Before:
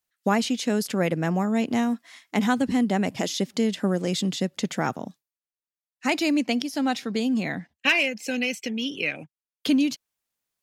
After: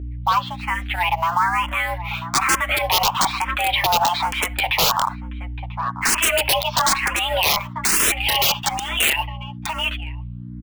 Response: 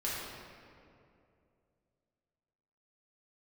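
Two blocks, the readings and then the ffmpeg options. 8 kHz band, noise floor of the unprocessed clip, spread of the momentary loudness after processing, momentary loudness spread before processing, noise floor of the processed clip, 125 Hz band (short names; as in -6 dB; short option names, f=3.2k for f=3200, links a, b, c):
+14.5 dB, under -85 dBFS, 11 LU, 7 LU, -33 dBFS, +2.5 dB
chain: -filter_complex "[0:a]asplit=2[a][b];[b]acompressor=threshold=-33dB:ratio=20,volume=1dB[c];[a][c]amix=inputs=2:normalize=0,highpass=f=560:t=q:w=0.5412,highpass=f=560:t=q:w=1.307,lowpass=f=2.7k:t=q:w=0.5176,lowpass=f=2.7k:t=q:w=0.7071,lowpass=f=2.7k:t=q:w=1.932,afreqshift=330,acrusher=bits=5:mode=log:mix=0:aa=0.000001,flanger=delay=5:depth=5.3:regen=4:speed=0.53:shape=sinusoidal,asplit=2[d][e];[1:a]atrim=start_sample=2205,atrim=end_sample=3969,asetrate=52920,aresample=44100[f];[e][f]afir=irnorm=-1:irlink=0,volume=-25dB[g];[d][g]amix=inputs=2:normalize=0,asoftclip=type=hard:threshold=-22dB,asplit=2[h][i];[i]adelay=991.3,volume=-22dB,highshelf=f=4k:g=-22.3[j];[h][j]amix=inputs=2:normalize=0,dynaudnorm=f=230:g=21:m=16dB,aeval=exprs='(mod(3.98*val(0)+1,2)-1)/3.98':c=same,aeval=exprs='val(0)+0.00891*(sin(2*PI*60*n/s)+sin(2*PI*2*60*n/s)/2+sin(2*PI*3*60*n/s)/3+sin(2*PI*4*60*n/s)/4+sin(2*PI*5*60*n/s)/5)':c=same,alimiter=level_in=22dB:limit=-1dB:release=50:level=0:latency=1,asplit=2[k][l];[l]afreqshift=1.1[m];[k][m]amix=inputs=2:normalize=1,volume=-7.5dB"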